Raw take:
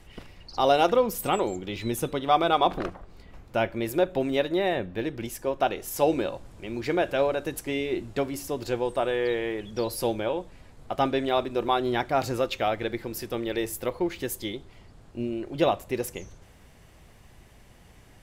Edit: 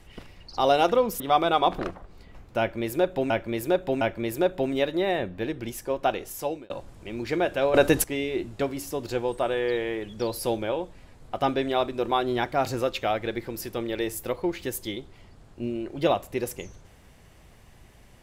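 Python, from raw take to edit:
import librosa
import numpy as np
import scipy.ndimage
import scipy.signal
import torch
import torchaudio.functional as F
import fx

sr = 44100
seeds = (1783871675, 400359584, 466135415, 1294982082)

y = fx.edit(x, sr, fx.cut(start_s=1.2, length_s=0.99),
    fx.repeat(start_s=3.58, length_s=0.71, count=3),
    fx.fade_out_span(start_s=5.76, length_s=0.51),
    fx.clip_gain(start_s=7.31, length_s=0.3, db=11.5), tone=tone)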